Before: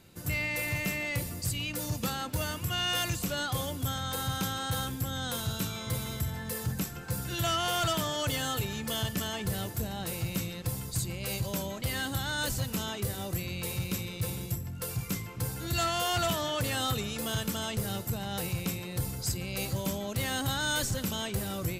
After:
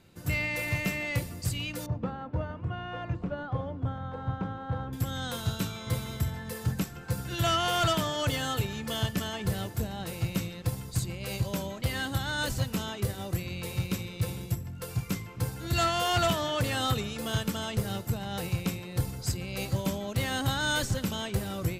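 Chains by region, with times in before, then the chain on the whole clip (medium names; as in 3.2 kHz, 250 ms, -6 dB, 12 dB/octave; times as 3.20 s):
1.86–4.93 s: low-pass 1.1 kHz + hum notches 50/100/150/200/250/300/350/400 Hz
whole clip: treble shelf 6.5 kHz -8.5 dB; upward expansion 1.5:1, over -39 dBFS; trim +4.5 dB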